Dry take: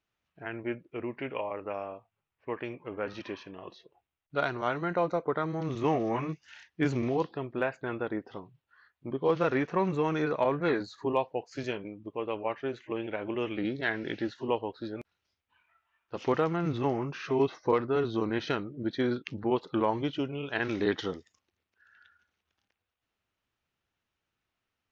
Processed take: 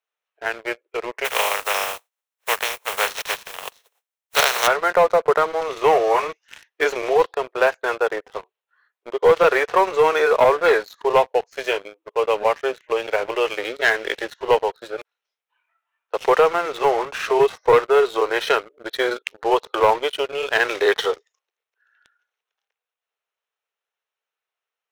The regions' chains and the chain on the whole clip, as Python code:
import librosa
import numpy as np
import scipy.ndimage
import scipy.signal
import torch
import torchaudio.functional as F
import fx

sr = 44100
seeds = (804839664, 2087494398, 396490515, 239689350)

y = fx.spec_flatten(x, sr, power=0.27, at=(1.24, 4.66), fade=0.02)
y = fx.highpass(y, sr, hz=360.0, slope=12, at=(1.24, 4.66), fade=0.02)
y = scipy.signal.sosfilt(scipy.signal.ellip(4, 1.0, 50, 430.0, 'highpass', fs=sr, output='sos'), y)
y = fx.notch(y, sr, hz=4700.0, q=8.2)
y = fx.leveller(y, sr, passes=3)
y = F.gain(torch.from_numpy(y), 4.0).numpy()